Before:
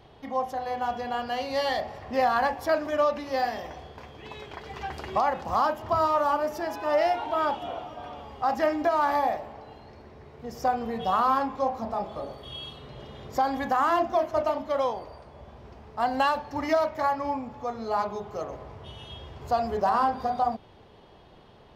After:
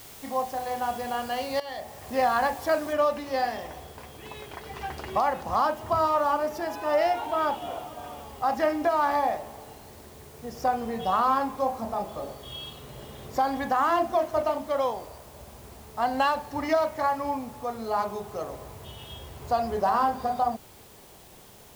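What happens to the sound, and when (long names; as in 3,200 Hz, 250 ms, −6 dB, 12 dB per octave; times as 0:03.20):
0:01.60–0:02.22: fade in, from −14.5 dB
0:02.93: noise floor change −47 dB −54 dB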